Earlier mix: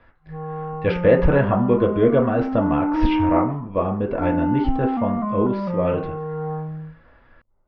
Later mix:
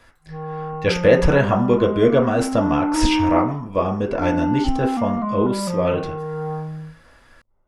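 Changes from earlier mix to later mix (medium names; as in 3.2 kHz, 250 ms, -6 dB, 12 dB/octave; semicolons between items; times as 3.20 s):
speech: remove distance through air 180 m; master: remove distance through air 290 m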